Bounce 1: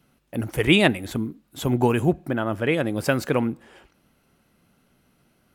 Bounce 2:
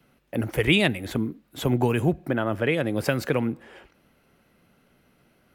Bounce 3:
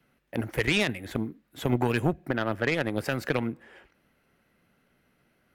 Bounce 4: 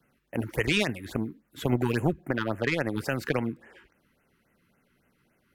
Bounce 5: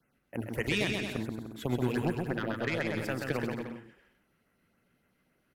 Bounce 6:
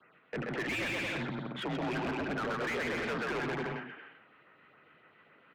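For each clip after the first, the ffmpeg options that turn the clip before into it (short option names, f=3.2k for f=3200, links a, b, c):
-filter_complex "[0:a]equalizer=f=500:t=o:w=1:g=4,equalizer=f=2k:t=o:w=1:g=4,equalizer=f=8k:t=o:w=1:g=-4,acrossover=split=190|3000[a][b][c];[b]acompressor=threshold=-22dB:ratio=4[d];[a][d][c]amix=inputs=3:normalize=0"
-af "equalizer=f=1.8k:w=2.2:g=5,alimiter=limit=-13dB:level=0:latency=1:release=31,aeval=exprs='0.224*(cos(1*acos(clip(val(0)/0.224,-1,1)))-cos(1*PI/2))+0.0398*(cos(3*acos(clip(val(0)/0.224,-1,1)))-cos(3*PI/2))':c=same"
-af "afftfilt=real='re*(1-between(b*sr/1024,580*pow(4500/580,0.5+0.5*sin(2*PI*3.6*pts/sr))/1.41,580*pow(4500/580,0.5+0.5*sin(2*PI*3.6*pts/sr))*1.41))':imag='im*(1-between(b*sr/1024,580*pow(4500/580,0.5+0.5*sin(2*PI*3.6*pts/sr))/1.41,580*pow(4500/580,0.5+0.5*sin(2*PI*3.6*pts/sr))*1.41))':win_size=1024:overlap=0.75"
-af "aecho=1:1:130|227.5|300.6|355.5|396.6:0.631|0.398|0.251|0.158|0.1,volume=-6dB"
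-filter_complex "[0:a]asoftclip=type=tanh:threshold=-27dB,highpass=f=220:t=q:w=0.5412,highpass=f=220:t=q:w=1.307,lowpass=f=3.6k:t=q:w=0.5176,lowpass=f=3.6k:t=q:w=0.7071,lowpass=f=3.6k:t=q:w=1.932,afreqshift=-91,asplit=2[a][b];[b]highpass=f=720:p=1,volume=28dB,asoftclip=type=tanh:threshold=-22dB[c];[a][c]amix=inputs=2:normalize=0,lowpass=f=2.7k:p=1,volume=-6dB,volume=-4.5dB"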